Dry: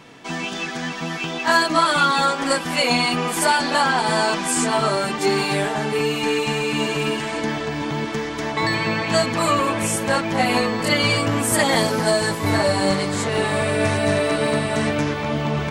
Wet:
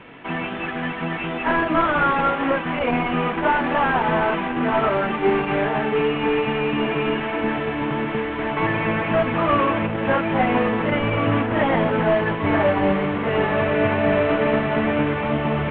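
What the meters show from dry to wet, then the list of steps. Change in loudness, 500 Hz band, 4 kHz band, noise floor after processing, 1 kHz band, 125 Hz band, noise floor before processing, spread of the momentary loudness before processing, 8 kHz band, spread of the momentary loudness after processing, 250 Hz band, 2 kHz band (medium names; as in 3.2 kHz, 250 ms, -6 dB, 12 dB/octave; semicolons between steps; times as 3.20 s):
-1.0 dB, +1.0 dB, -10.0 dB, -28 dBFS, 0.0 dB, -0.5 dB, -29 dBFS, 8 LU, under -40 dB, 5 LU, +1.5 dB, -1.5 dB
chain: CVSD coder 16 kbps; hum notches 50/100/150 Hz; trim +2.5 dB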